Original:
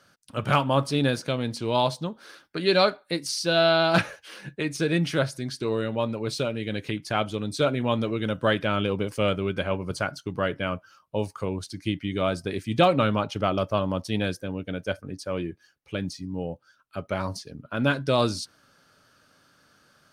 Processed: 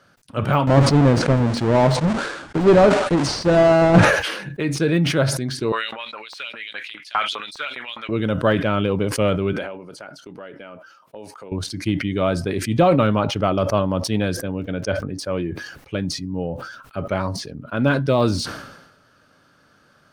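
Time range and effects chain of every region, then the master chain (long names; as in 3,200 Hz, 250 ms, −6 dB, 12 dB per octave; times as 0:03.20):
0:00.67–0:04.05: each half-wave held at its own peak + Butterworth low-pass 9,300 Hz
0:05.72–0:08.09: bass and treble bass +5 dB, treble −6 dB + auto-filter high-pass saw up 4.9 Hz 960–5,200 Hz
0:09.53–0:11.52: high-pass filter 270 Hz + notch filter 1,100 Hz, Q 10 + downward compressor 3 to 1, threshold −44 dBFS
0:14.55–0:15.05: low-pass filter 5,200 Hz + surface crackle 57 per second −53 dBFS
whole clip: de-essing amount 90%; high-shelf EQ 3,300 Hz −9 dB; level that may fall only so fast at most 56 dB per second; level +5.5 dB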